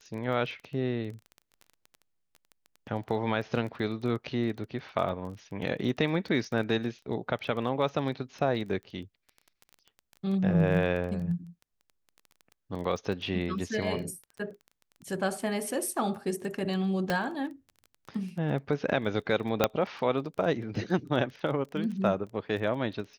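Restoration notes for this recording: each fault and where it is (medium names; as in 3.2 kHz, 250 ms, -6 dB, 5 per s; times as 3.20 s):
crackle 17 per s -37 dBFS
17.10 s: pop -15 dBFS
19.64 s: pop -7 dBFS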